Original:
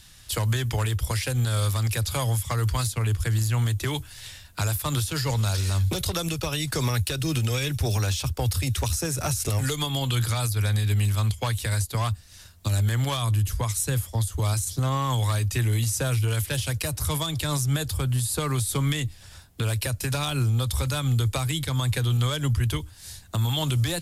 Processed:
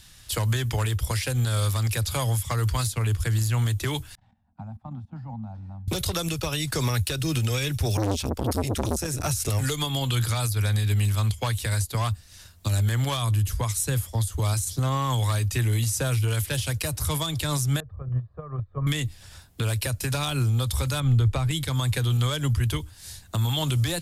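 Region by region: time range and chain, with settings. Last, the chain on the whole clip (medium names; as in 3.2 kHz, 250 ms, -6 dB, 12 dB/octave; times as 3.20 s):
4.15–5.88 s: level held to a coarse grid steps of 14 dB + two resonant band-passes 420 Hz, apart 1.8 oct + tilt EQ -3.5 dB/octave
7.97–9.24 s: resonant low shelf 120 Hz +7 dB, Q 1.5 + transformer saturation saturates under 610 Hz
17.80–18.87 s: gate -24 dBFS, range -14 dB + low-pass 1.3 kHz 24 dB/octave + comb 1.7 ms, depth 61%
21.00–21.51 s: low-pass 2.1 kHz 6 dB/octave + bass shelf 71 Hz +11 dB
whole clip: none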